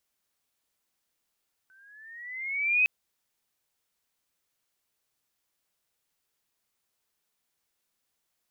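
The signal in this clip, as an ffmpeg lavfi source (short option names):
-f lavfi -i "aevalsrc='pow(10,(-18+38.5*(t/1.16-1))/20)*sin(2*PI*1520*1.16/(9*log(2)/12)*(exp(9*log(2)/12*t/1.16)-1))':d=1.16:s=44100"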